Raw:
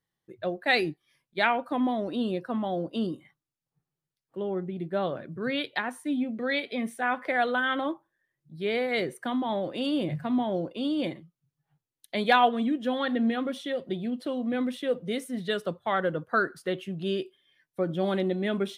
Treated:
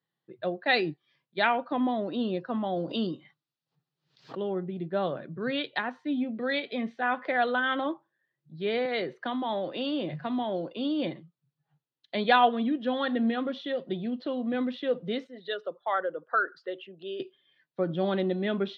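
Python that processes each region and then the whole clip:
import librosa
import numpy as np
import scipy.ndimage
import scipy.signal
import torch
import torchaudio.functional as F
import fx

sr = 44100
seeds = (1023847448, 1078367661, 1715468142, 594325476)

y = fx.chain(x, sr, fx.high_shelf(hz=3600.0, db=11.5),
    fx.pre_swell(db_per_s=120.0), at=(2.76, 4.53))
y = fx.chain(y, sr, fx.low_shelf(hz=190.0, db=-9.5),
    fx.band_squash(depth_pct=40), at=(8.85, 10.76))
y = fx.chain(y, sr, fx.envelope_sharpen(power=1.5),
    fx.highpass(hz=540.0, slope=12), at=(15.27, 17.2))
y = scipy.signal.sosfilt(scipy.signal.ellip(3, 1.0, 40, [130.0, 4300.0], 'bandpass', fs=sr, output='sos'), y)
y = fx.notch(y, sr, hz=2200.0, q=18.0)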